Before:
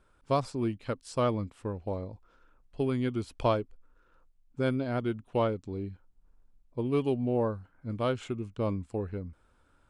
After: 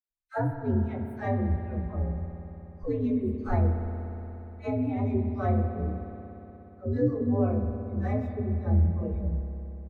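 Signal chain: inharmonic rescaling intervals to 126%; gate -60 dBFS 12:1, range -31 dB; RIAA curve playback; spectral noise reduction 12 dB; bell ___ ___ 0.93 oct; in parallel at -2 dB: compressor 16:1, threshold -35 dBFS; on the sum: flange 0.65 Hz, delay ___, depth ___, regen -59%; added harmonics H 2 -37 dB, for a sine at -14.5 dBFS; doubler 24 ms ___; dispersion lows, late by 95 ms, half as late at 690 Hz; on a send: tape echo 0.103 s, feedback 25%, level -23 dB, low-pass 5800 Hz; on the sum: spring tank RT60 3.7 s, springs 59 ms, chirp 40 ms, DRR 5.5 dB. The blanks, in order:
5800 Hz, -11 dB, 4.4 ms, 6 ms, -8 dB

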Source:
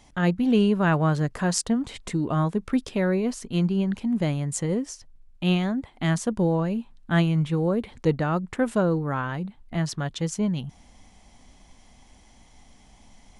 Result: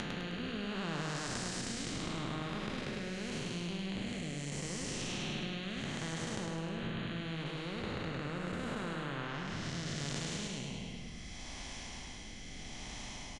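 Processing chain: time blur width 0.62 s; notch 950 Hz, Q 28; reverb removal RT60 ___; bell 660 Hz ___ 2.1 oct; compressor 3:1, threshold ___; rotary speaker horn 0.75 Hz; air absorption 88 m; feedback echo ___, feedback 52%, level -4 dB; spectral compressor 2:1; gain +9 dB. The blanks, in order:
1.3 s, -10 dB, -46 dBFS, 0.104 s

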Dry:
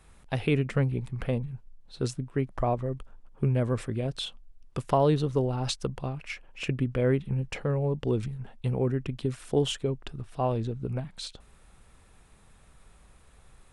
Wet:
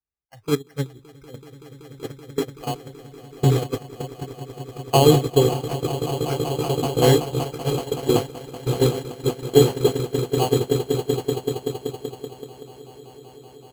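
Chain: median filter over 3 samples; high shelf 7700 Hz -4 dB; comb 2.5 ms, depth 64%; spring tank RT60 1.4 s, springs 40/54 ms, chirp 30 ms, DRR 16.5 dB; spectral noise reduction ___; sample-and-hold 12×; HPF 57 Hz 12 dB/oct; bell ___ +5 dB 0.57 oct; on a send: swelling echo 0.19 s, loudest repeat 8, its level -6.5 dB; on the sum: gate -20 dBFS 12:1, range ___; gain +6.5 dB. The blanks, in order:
26 dB, 180 Hz, -22 dB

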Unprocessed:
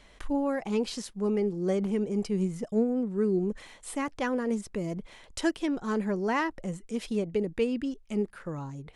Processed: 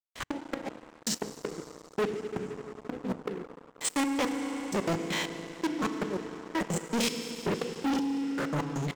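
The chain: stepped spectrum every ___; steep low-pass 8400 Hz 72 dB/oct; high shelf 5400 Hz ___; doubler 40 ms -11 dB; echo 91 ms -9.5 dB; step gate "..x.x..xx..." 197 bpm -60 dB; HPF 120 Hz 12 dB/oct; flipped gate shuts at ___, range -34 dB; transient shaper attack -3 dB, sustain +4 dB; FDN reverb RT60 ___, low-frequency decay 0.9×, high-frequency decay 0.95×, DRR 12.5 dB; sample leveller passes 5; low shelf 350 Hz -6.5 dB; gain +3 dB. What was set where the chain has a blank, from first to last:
0.1 s, +4 dB, -23 dBFS, 4 s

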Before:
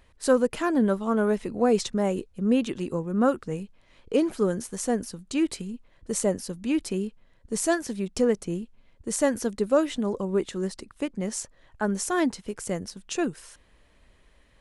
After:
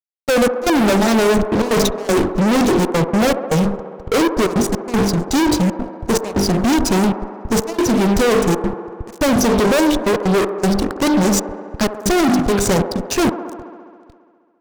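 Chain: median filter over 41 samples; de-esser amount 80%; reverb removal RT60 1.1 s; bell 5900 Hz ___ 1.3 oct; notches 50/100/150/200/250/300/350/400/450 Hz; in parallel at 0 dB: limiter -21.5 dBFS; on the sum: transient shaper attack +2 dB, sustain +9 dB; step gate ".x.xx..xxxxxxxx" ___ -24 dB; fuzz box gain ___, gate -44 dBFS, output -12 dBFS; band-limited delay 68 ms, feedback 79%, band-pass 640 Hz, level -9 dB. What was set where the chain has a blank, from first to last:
+13.5 dB, 158 bpm, 36 dB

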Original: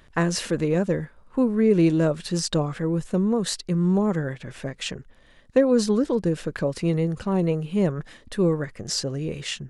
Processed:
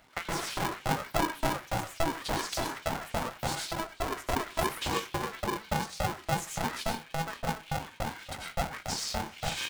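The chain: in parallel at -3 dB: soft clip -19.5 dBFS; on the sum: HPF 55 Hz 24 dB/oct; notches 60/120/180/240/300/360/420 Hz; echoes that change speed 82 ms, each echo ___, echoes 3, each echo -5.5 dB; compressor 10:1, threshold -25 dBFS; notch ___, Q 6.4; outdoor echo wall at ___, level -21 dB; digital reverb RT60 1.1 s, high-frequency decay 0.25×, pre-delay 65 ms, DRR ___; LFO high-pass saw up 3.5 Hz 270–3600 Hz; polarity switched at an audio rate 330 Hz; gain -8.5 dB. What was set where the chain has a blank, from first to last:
+6 st, 2300 Hz, 64 m, -3 dB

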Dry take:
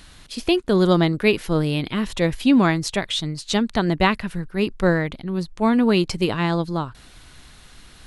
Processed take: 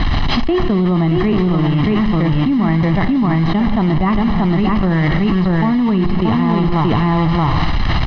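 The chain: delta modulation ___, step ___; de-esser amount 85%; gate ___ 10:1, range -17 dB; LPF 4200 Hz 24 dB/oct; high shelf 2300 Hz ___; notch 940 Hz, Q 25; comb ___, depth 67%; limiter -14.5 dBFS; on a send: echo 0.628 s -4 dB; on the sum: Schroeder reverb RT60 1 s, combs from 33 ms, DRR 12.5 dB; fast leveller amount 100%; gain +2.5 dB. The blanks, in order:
32 kbps, -20.5 dBFS, -22 dBFS, -10 dB, 1 ms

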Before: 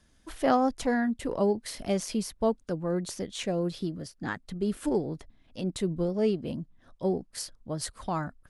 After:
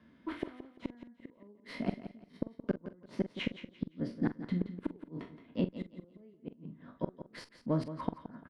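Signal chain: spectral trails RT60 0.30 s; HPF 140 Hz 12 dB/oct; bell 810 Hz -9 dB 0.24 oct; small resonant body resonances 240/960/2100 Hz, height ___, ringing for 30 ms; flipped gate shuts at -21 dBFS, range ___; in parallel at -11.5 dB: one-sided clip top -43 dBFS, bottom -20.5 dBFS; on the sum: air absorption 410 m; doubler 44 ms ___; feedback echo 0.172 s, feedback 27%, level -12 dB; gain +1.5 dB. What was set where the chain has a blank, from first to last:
8 dB, -38 dB, -12.5 dB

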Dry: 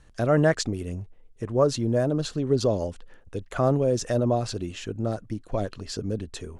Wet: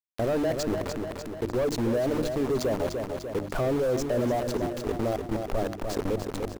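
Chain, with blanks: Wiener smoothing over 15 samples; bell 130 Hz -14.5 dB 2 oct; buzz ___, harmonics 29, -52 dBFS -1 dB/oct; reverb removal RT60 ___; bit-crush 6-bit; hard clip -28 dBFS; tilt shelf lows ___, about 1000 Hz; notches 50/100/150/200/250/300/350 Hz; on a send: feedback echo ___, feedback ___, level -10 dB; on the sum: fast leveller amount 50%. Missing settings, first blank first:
50 Hz, 0.58 s, +7.5 dB, 0.297 s, 36%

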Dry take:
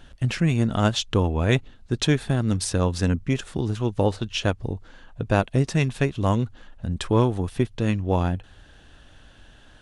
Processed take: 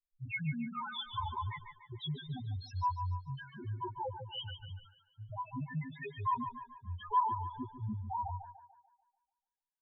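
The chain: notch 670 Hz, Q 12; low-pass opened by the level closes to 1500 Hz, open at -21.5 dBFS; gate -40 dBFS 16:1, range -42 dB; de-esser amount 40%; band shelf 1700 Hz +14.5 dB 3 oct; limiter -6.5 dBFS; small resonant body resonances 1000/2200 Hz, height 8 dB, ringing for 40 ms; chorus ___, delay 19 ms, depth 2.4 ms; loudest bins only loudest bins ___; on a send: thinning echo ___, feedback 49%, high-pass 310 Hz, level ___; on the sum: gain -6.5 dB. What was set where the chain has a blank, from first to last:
0.51 Hz, 1, 0.146 s, -8.5 dB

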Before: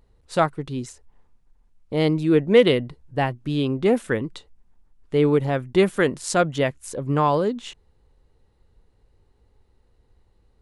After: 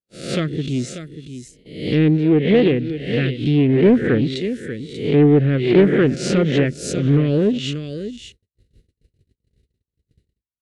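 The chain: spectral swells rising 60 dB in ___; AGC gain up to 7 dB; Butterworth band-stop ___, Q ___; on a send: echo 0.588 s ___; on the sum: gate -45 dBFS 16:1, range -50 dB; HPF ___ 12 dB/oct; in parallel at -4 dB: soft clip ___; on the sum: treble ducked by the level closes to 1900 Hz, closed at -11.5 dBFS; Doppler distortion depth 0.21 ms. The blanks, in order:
0.63 s, 930 Hz, 0.5, -12 dB, 61 Hz, -14 dBFS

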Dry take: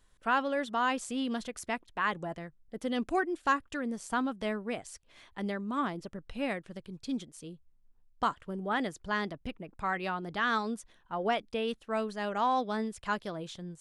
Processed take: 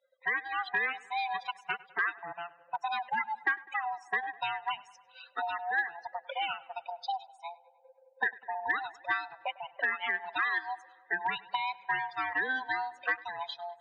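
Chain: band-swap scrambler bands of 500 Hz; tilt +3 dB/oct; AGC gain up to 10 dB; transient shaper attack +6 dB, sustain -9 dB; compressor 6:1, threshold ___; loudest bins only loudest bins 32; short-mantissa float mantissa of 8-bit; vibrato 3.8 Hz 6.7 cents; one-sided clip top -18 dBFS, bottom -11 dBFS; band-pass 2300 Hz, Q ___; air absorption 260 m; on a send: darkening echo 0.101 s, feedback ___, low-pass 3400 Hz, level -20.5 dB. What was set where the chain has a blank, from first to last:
-23 dBFS, 0.64, 68%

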